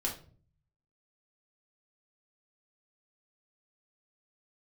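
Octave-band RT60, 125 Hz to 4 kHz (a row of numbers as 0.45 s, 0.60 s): 0.95 s, 0.70 s, 0.50 s, 0.35 s, 0.35 s, 0.30 s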